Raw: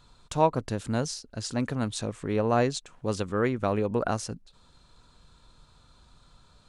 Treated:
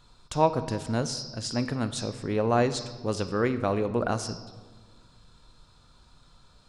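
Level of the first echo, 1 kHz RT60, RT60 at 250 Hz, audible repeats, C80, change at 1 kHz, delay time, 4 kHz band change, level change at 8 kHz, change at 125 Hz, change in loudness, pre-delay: none, 1.5 s, 2.0 s, none, 14.5 dB, +0.5 dB, none, +3.0 dB, +0.5 dB, +0.5 dB, +0.5 dB, 3 ms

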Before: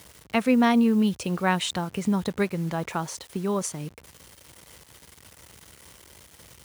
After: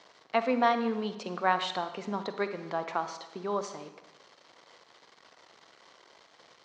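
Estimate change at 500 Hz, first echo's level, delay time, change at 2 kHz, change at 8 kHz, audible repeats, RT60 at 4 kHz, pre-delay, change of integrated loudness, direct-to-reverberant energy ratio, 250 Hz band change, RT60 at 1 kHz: -2.5 dB, none, none, -4.0 dB, -15.0 dB, none, 0.80 s, 38 ms, -6.5 dB, 9.0 dB, -12.5 dB, 0.95 s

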